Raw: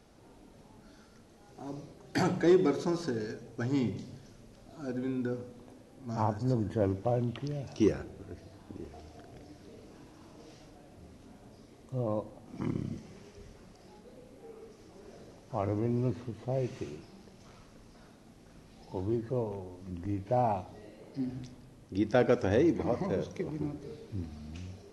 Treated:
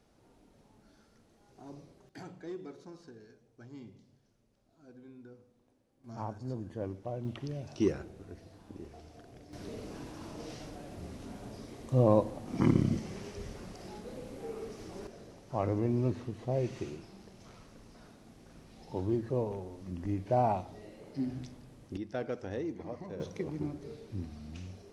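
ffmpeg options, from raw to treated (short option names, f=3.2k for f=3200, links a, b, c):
-af "asetnsamples=n=441:p=0,asendcmd='2.09 volume volume -18.5dB;6.04 volume volume -9dB;7.25 volume volume -2.5dB;9.53 volume volume 8.5dB;15.07 volume volume 0.5dB;21.97 volume volume -11dB;23.2 volume volume -1dB',volume=-7dB"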